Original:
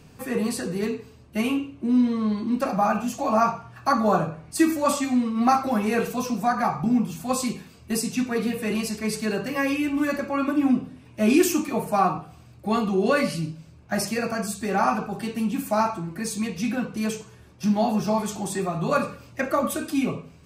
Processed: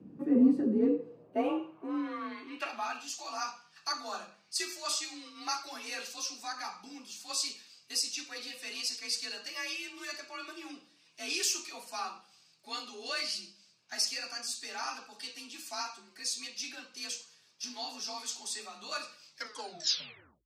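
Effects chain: tape stop on the ending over 1.22 s; frequency shift +40 Hz; band-pass sweep 260 Hz -> 4.9 kHz, 0.68–3.11 s; trim +4.5 dB

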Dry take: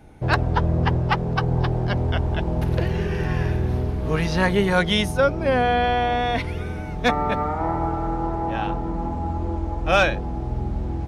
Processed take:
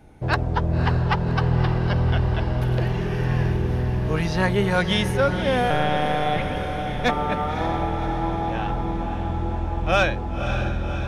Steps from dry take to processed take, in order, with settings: 5.70–6.56 s: monotone LPC vocoder at 8 kHz 150 Hz; echo that smears into a reverb 559 ms, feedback 65%, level -8 dB; trim -2 dB

